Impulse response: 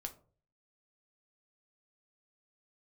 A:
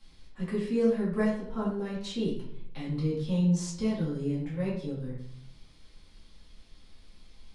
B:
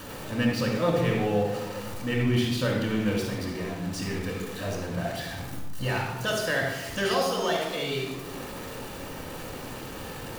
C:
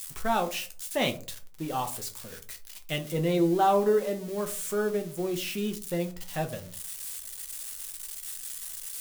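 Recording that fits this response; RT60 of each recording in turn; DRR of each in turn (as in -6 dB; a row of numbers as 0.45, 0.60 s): C; 0.70, 1.1, 0.45 s; -9.0, -2.0, 5.0 dB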